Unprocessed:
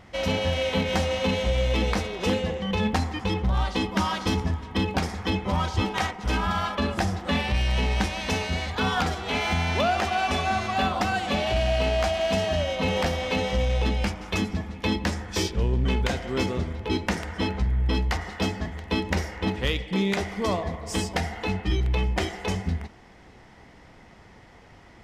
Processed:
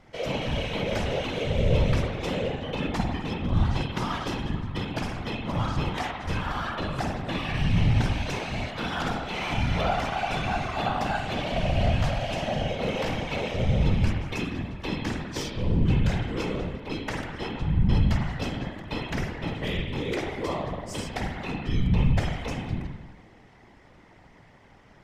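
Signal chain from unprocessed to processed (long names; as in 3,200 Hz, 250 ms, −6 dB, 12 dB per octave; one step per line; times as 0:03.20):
spring reverb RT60 1.1 s, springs 48 ms, chirp 35 ms, DRR 0 dB
random phases in short frames
level −6.5 dB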